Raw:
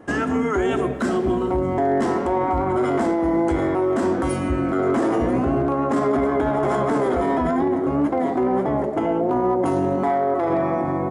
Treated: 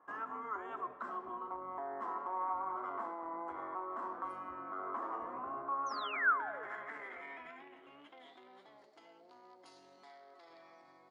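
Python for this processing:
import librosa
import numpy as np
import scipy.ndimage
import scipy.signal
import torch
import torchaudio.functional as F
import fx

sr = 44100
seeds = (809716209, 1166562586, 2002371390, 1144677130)

y = fx.spec_paint(x, sr, seeds[0], shape='fall', start_s=5.86, length_s=0.8, low_hz=390.0, high_hz=6500.0, level_db=-19.0)
y = fx.filter_sweep_bandpass(y, sr, from_hz=1100.0, to_hz=4500.0, start_s=5.68, end_s=8.9, q=5.7)
y = y * librosa.db_to_amplitude(-6.0)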